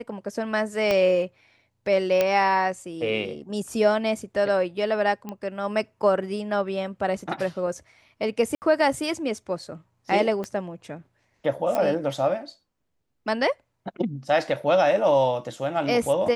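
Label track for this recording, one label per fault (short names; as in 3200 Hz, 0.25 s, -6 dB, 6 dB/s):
0.910000	0.910000	pop -10 dBFS
2.210000	2.210000	pop -8 dBFS
5.290000	5.290000	pop -20 dBFS
8.550000	8.620000	gap 69 ms
10.440000	10.440000	pop -19 dBFS
11.750000	11.750000	pop -14 dBFS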